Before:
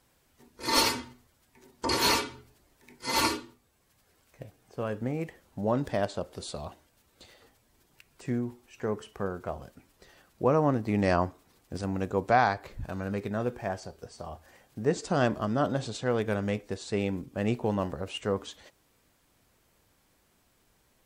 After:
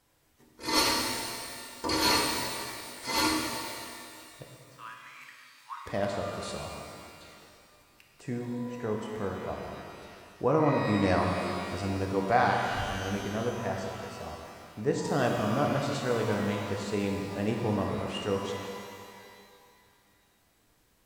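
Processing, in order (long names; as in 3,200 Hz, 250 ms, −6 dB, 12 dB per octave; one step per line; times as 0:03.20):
0:04.44–0:05.86: Butterworth high-pass 960 Hz 96 dB per octave
reverb with rising layers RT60 2.3 s, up +12 semitones, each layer −8 dB, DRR 0.5 dB
level −3 dB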